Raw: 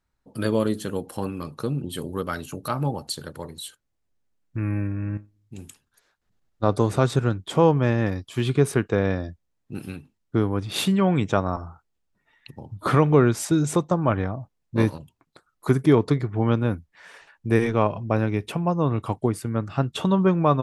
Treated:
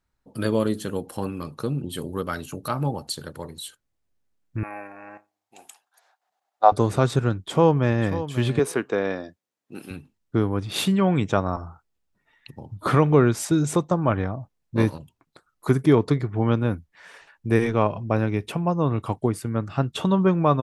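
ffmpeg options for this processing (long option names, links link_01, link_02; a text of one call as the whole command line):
ffmpeg -i in.wav -filter_complex "[0:a]asettb=1/sr,asplit=3[link_01][link_02][link_03];[link_01]atrim=end=4.634[link_04];[link_02]atrim=start=4.63:end=6.72,asetpts=PTS-STARTPTS,afade=type=in:duration=0.004:curve=qsin,afade=type=out:start_time=2.086:duration=0.004:curve=qsin,highpass=frequency=750:width_type=q:width=6.5[link_05];[link_03]atrim=start=6.716[link_06];[link_04][link_05]acrossfade=duration=0.004:curve1=hsin:curve2=qsin[link_07];[link_07][link_06]acrossfade=duration=0.004:curve1=qsin:curve2=hsin,asplit=2[link_08][link_09];[link_09]afade=type=in:start_time=7.36:duration=0.01,afade=type=out:start_time=8.08:duration=0.01,aecho=0:1:540|1080:0.237137|0.0355706[link_10];[link_08][link_10]amix=inputs=2:normalize=0,asettb=1/sr,asplit=3[link_11][link_12][link_13];[link_11]atrim=end=8.594[link_14];[link_12]atrim=start=8.59:end=9.91,asetpts=PTS-STARTPTS,afade=type=in:duration=0.004:curve=qsin,afade=type=out:start_time=1.316:duration=0.004:curve=qsin,highpass=280[link_15];[link_13]atrim=start=9.906[link_16];[link_14][link_15]acrossfade=duration=0.004:curve1=hsin:curve2=qsin[link_17];[link_17][link_16]acrossfade=duration=0.004:curve1=qsin:curve2=hsin" out.wav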